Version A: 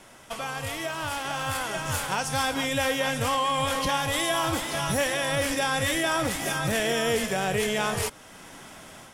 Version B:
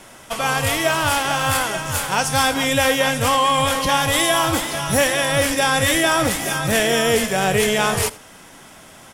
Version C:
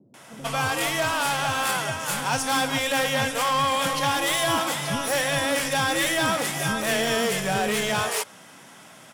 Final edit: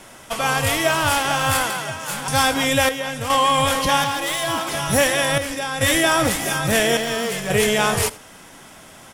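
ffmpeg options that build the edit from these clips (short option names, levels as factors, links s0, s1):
-filter_complex "[2:a]asplit=3[s0][s1][s2];[0:a]asplit=2[s3][s4];[1:a]asplit=6[s5][s6][s7][s8][s9][s10];[s5]atrim=end=1.702[s11];[s0]atrim=start=1.698:end=2.282[s12];[s6]atrim=start=2.278:end=2.892[s13];[s3]atrim=start=2.888:end=3.302[s14];[s7]atrim=start=3.298:end=4.042[s15];[s1]atrim=start=4.038:end=4.692[s16];[s8]atrim=start=4.688:end=5.382[s17];[s4]atrim=start=5.378:end=5.812[s18];[s9]atrim=start=5.808:end=6.972[s19];[s2]atrim=start=6.968:end=7.502[s20];[s10]atrim=start=7.498[s21];[s11][s12]acrossfade=d=0.004:c1=hsin:c2=hsin[s22];[s22][s13]acrossfade=d=0.004:c1=hsin:c2=hsin[s23];[s23][s14]acrossfade=d=0.004:c1=hsin:c2=hsin[s24];[s24][s15]acrossfade=d=0.004:c1=hsin:c2=hsin[s25];[s25][s16]acrossfade=d=0.004:c1=hsin:c2=hsin[s26];[s26][s17]acrossfade=d=0.004:c1=hsin:c2=hsin[s27];[s27][s18]acrossfade=d=0.004:c1=hsin:c2=hsin[s28];[s28][s19]acrossfade=d=0.004:c1=hsin:c2=hsin[s29];[s29][s20]acrossfade=d=0.004:c1=hsin:c2=hsin[s30];[s30][s21]acrossfade=d=0.004:c1=hsin:c2=hsin"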